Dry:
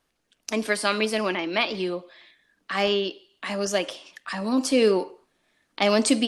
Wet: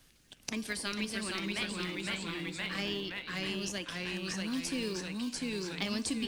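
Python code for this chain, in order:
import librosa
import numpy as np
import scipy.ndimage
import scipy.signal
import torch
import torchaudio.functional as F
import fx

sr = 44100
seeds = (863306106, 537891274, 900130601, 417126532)

p1 = fx.tone_stack(x, sr, knobs='6-0-2')
p2 = fx.sample_hold(p1, sr, seeds[0], rate_hz=1400.0, jitter_pct=0)
p3 = p1 + F.gain(torch.from_numpy(p2), -12.0).numpy()
p4 = fx.echo_pitch(p3, sr, ms=417, semitones=-1, count=3, db_per_echo=-3.0)
p5 = fx.band_squash(p4, sr, depth_pct=70)
y = F.gain(torch.from_numpy(p5), 6.5).numpy()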